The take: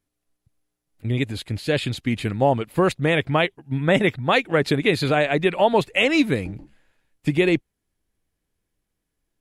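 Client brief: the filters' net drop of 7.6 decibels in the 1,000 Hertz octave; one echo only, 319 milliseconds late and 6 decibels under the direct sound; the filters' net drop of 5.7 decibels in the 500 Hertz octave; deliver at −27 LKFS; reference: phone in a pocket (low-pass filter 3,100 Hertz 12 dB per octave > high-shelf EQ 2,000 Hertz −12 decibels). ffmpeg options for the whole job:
ffmpeg -i in.wav -af "lowpass=3100,equalizer=frequency=500:width_type=o:gain=-5,equalizer=frequency=1000:width_type=o:gain=-5.5,highshelf=frequency=2000:gain=-12,aecho=1:1:319:0.501,volume=-2dB" out.wav

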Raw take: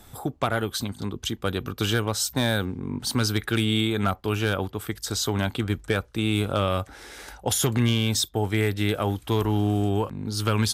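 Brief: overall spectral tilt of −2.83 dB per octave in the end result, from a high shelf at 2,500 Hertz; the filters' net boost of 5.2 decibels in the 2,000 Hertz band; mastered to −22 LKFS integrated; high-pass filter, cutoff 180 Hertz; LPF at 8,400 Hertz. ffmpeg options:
ffmpeg -i in.wav -af "highpass=180,lowpass=8400,equalizer=frequency=2000:width_type=o:gain=4.5,highshelf=frequency=2500:gain=5,volume=2.5dB" out.wav

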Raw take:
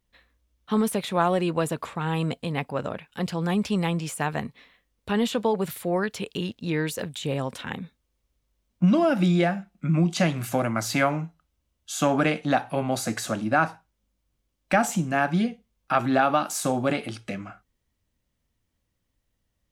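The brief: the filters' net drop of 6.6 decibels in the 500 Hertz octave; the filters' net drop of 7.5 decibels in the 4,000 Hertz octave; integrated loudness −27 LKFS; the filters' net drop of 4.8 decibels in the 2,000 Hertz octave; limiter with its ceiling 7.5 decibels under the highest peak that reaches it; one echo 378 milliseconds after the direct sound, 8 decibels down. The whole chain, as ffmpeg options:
ffmpeg -i in.wav -af "equalizer=frequency=500:width_type=o:gain=-8.5,equalizer=frequency=2000:width_type=o:gain=-4,equalizer=frequency=4000:width_type=o:gain=-8.5,alimiter=limit=-19.5dB:level=0:latency=1,aecho=1:1:378:0.398,volume=3.5dB" out.wav

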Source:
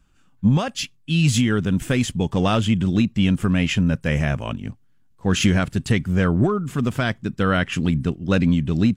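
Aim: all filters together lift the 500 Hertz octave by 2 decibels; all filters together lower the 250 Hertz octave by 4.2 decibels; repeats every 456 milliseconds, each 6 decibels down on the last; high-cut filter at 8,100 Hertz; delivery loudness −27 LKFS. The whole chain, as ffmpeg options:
ffmpeg -i in.wav -af "lowpass=8100,equalizer=frequency=250:width_type=o:gain=-7,equalizer=frequency=500:width_type=o:gain=4.5,aecho=1:1:456|912|1368|1824|2280|2736:0.501|0.251|0.125|0.0626|0.0313|0.0157,volume=-5.5dB" out.wav

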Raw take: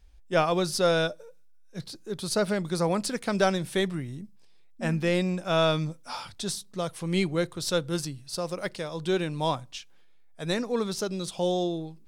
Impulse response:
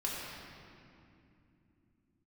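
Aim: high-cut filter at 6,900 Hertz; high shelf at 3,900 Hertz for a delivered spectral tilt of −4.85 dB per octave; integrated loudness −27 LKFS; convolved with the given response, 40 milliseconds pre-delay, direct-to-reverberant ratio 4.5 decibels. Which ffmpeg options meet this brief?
-filter_complex "[0:a]lowpass=6900,highshelf=frequency=3900:gain=5.5,asplit=2[link_01][link_02];[1:a]atrim=start_sample=2205,adelay=40[link_03];[link_02][link_03]afir=irnorm=-1:irlink=0,volume=-9dB[link_04];[link_01][link_04]amix=inputs=2:normalize=0"

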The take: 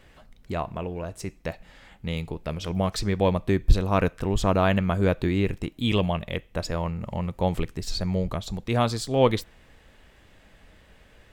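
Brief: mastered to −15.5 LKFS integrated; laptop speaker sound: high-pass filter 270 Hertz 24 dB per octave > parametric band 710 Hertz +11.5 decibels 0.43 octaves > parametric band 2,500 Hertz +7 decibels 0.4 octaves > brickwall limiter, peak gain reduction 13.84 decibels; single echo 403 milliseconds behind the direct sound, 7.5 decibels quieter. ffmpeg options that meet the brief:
ffmpeg -i in.wav -af "highpass=frequency=270:width=0.5412,highpass=frequency=270:width=1.3066,equalizer=frequency=710:width_type=o:width=0.43:gain=11.5,equalizer=frequency=2500:width_type=o:width=0.4:gain=7,aecho=1:1:403:0.422,volume=14.5dB,alimiter=limit=-3dB:level=0:latency=1" out.wav

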